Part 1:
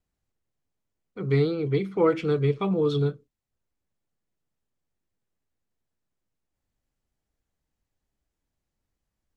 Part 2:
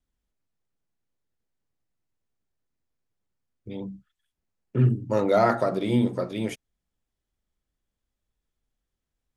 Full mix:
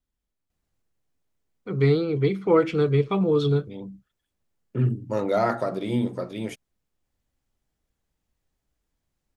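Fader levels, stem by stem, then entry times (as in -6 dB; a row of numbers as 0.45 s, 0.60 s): +2.5 dB, -2.5 dB; 0.50 s, 0.00 s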